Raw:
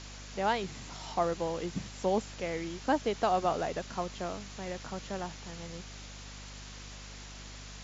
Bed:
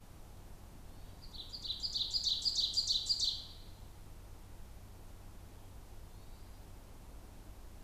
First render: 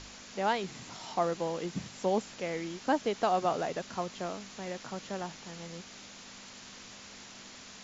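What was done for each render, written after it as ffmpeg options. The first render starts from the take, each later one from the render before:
-af "bandreject=f=50:t=h:w=4,bandreject=f=100:t=h:w=4,bandreject=f=150:t=h:w=4"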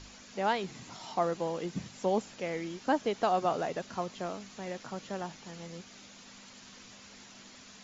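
-af "afftdn=nr=6:nf=-50"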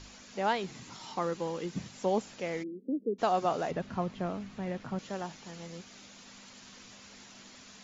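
-filter_complex "[0:a]asettb=1/sr,asplit=3[a][b][c];[a]atrim=end=0.804[d];[b]atrim=start=0.8:end=1.72,asetpts=PTS-STARTPTS,afade=t=in:d=0.004:c=qsin,afade=t=out:st=0.916:d=0.004:c=qsin,equalizer=f=680:t=o:w=0.28:g=-10[e];[c]atrim=start=1.716[f];[d][e]acrossfade=d=0.004:c1=hsin:c2=qsin[g];[g][f]acrossfade=d=0.004:c1=qsin:c2=hsin,asplit=3[h][i][j];[h]afade=t=out:st=2.62:d=0.02[k];[i]asuperpass=centerf=300:order=12:qfactor=1,afade=t=in:st=2.62:d=0.02,afade=t=out:st=3.18:d=0.02[l];[j]afade=t=in:st=3.18:d=0.02[m];[k][l][m]amix=inputs=3:normalize=0,asettb=1/sr,asplit=3[n][o][p];[n]atrim=end=3.714[q];[o]atrim=start=3.71:end=4.99,asetpts=PTS-STARTPTS,afade=t=in:d=0.004:c=qsin,afade=t=out:st=1.276:d=0.004:c=qsin,bass=f=250:g=10,treble=f=4k:g=-12[r];[p]atrim=start=4.986[s];[q][r]acrossfade=d=0.004:c1=hsin:c2=qsin[t];[t][s]acrossfade=d=0.004:c1=qsin:c2=hsin"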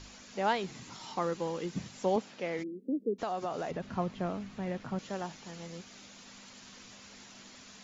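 -filter_complex "[0:a]asettb=1/sr,asplit=3[a][b][c];[a]atrim=end=2.164[d];[b]atrim=start=2.16:end=2.59,asetpts=PTS-STARTPTS,afade=t=in:d=0.004:c=qsin,afade=t=out:st=0.426:d=0.004:c=qsin,highpass=150,lowpass=4.8k[e];[c]atrim=start=2.586[f];[d][e]acrossfade=d=0.004:c1=hsin:c2=qsin[g];[g][f]acrossfade=d=0.004:c1=qsin:c2=hsin,asettb=1/sr,asplit=3[h][i][j];[h]atrim=end=3.154[k];[i]atrim=start=3.15:end=3.91,asetpts=PTS-STARTPTS,afade=t=in:d=0.004:c=qsin,afade=t=out:st=0.756:d=0.004:c=qsin,acompressor=threshold=-32dB:ratio=3:attack=3.2:release=140:knee=1:detection=peak[l];[j]atrim=start=3.906[m];[k][l]acrossfade=d=0.004:c1=hsin:c2=qsin[n];[n][m]acrossfade=d=0.004:c1=qsin:c2=hsin"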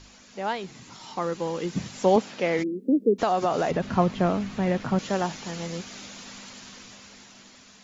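-af "dynaudnorm=f=380:g=9:m=11.5dB"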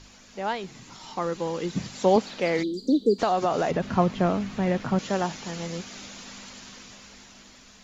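-filter_complex "[1:a]volume=-11.5dB[a];[0:a][a]amix=inputs=2:normalize=0"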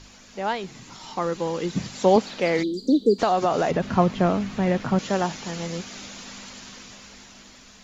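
-af "volume=2.5dB"

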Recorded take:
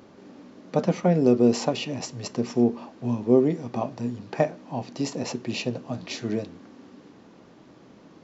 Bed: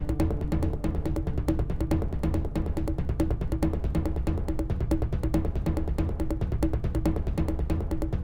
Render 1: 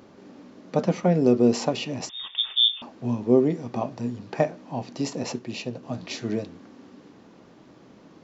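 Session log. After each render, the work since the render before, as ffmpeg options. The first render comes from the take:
-filter_complex "[0:a]asettb=1/sr,asplit=3[a][b][c];[a]atrim=end=2.094[d];[b]atrim=start=2.09:end=2.82,asetpts=PTS-STARTPTS,afade=t=in:d=0.004:c=qsin,afade=t=out:st=0.726:d=0.004:c=qsin,lowpass=f=3.2k:t=q:w=0.5098,lowpass=f=3.2k:t=q:w=0.6013,lowpass=f=3.2k:t=q:w=0.9,lowpass=f=3.2k:t=q:w=2.563,afreqshift=-3800[e];[c]atrim=start=2.816[f];[d][e]acrossfade=d=0.004:c1=hsin:c2=qsin[g];[g][f]acrossfade=d=0.004:c1=qsin:c2=hsin,asplit=3[h][i][j];[h]atrim=end=5.392[k];[i]atrim=start=5.388:end=5.832,asetpts=PTS-STARTPTS,volume=-4dB[l];[j]atrim=start=5.828[m];[k][l]acrossfade=d=0.004:c1=hsin:c2=hsin[n];[n][m]acrossfade=d=0.004:c1=hsin:c2=hsin"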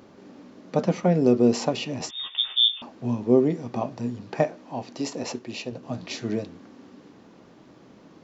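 -filter_complex "[0:a]asettb=1/sr,asplit=3[a][b][c];[a]atrim=end=1.994[d];[b]atrim=start=1.99:end=2.57,asetpts=PTS-STARTPTS,afade=t=in:d=0.004:c=qsin,afade=t=out:st=0.576:d=0.004:c=qsin,asplit=2[e][f];[f]adelay=13,volume=-5dB[g];[e][g]amix=inputs=2:normalize=0,atrim=end_sample=25578[h];[c]atrim=start=2.566[i];[d][h]acrossfade=d=0.004:c1=hsin:c2=qsin[j];[j][i]acrossfade=d=0.004:c1=qsin:c2=hsin,asettb=1/sr,asplit=3[k][l][m];[k]atrim=end=4.444[n];[l]atrim=start=4.44:end=5.72,asetpts=PTS-STARTPTS,afade=t=in:d=0.004:c=qsin,afade=t=out:st=1.276:d=0.004:c=qsin,equalizer=f=150:t=o:w=0.88:g=-8[o];[m]atrim=start=5.716[p];[n][o]acrossfade=d=0.004:c1=hsin:c2=qsin[q];[q][p]acrossfade=d=0.004:c1=qsin:c2=hsin"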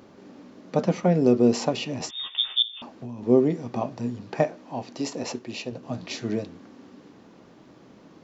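-filter_complex "[0:a]asettb=1/sr,asplit=3[a][b][c];[a]atrim=end=2.624[d];[b]atrim=start=2.62:end=3.23,asetpts=PTS-STARTPTS,afade=t=in:d=0.004:c=qsin,afade=t=out:st=0.606:d=0.004:c=qsin,acompressor=threshold=-32dB:ratio=8:attack=3.2:release=140:knee=1:detection=peak[e];[c]atrim=start=3.226[f];[d][e]acrossfade=d=0.004:c1=hsin:c2=qsin[g];[g][f]acrossfade=d=0.004:c1=qsin:c2=hsin"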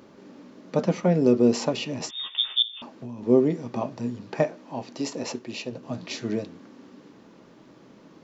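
-af "equalizer=f=80:t=o:w=0.62:g=-7.5,bandreject=f=740:w=12"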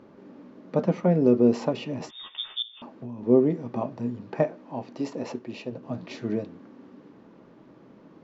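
-af "lowpass=f=3.6k:p=1,highshelf=f=2.6k:g=-9"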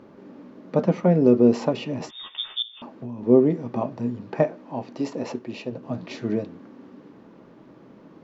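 -af "volume=3dB"

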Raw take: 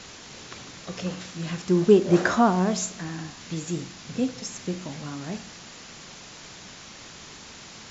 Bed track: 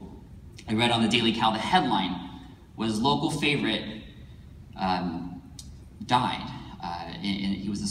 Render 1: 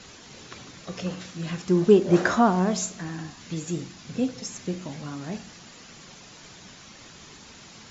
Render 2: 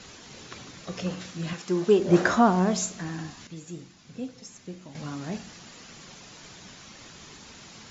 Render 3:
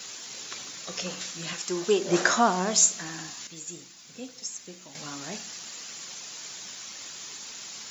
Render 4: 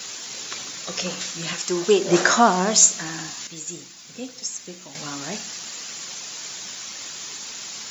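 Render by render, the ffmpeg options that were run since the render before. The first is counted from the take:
-af "afftdn=nr=6:nf=-45"
-filter_complex "[0:a]asettb=1/sr,asplit=3[a][b][c];[a]atrim=end=1.534[d];[b]atrim=start=1.53:end=2,asetpts=PTS-STARTPTS,afade=t=in:d=0.004:c=qsin,afade=t=out:st=0.466:d=0.004:c=qsin,highpass=f=420:p=1[e];[c]atrim=start=1.996[f];[d][e]acrossfade=d=0.004:c1=hsin:c2=qsin[g];[g][f]acrossfade=d=0.004:c1=qsin:c2=hsin,asplit=3[h][i][j];[h]atrim=end=3.472[k];[i]atrim=start=3.468:end=4.952,asetpts=PTS-STARTPTS,volume=-9.5dB[l];[j]atrim=start=4.948[m];[k][l]acrossfade=d=0.004:c1=hsin:c2=hsin[n];[n][m]acrossfade=d=0.004:c1=hsin:c2=hsin"
-af "aemphasis=mode=production:type=riaa"
-af "volume=6dB,alimiter=limit=-2dB:level=0:latency=1"

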